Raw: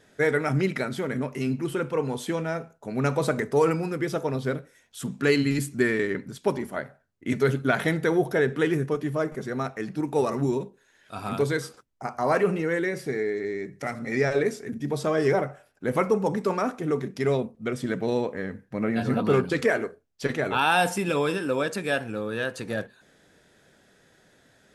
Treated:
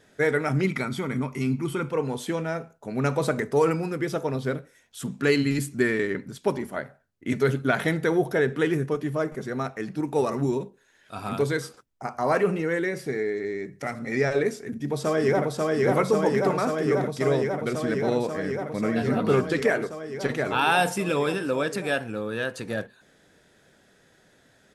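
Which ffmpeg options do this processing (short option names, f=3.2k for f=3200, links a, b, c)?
-filter_complex "[0:a]asettb=1/sr,asplit=3[a][b][c];[a]atrim=end=0.644[d];[b]atrim=start=0.64:end=1.89,asetpts=PTS-STARTPTS,afade=t=in:d=0.004:c=qsin,afade=t=out:st=1.246:d=0.004:c=qsin,aecho=1:1:0.9:0.49,atrim=end_sample=55125[e];[c]atrim=start=1.886[f];[d][e]acrossfade=d=0.004:c1=hsin:c2=qsin[g];[g][f]acrossfade=d=0.004:c1=qsin:c2=hsin,asplit=2[h][i];[i]afade=t=in:st=14.5:d=0.01,afade=t=out:st=15.48:d=0.01,aecho=0:1:540|1080|1620|2160|2700|3240|3780|4320|4860|5400|5940|6480:0.891251|0.757563|0.643929|0.547339|0.465239|0.395453|0.336135|0.285715|0.242857|0.206429|0.175464|0.149145[j];[h][j]amix=inputs=2:normalize=0"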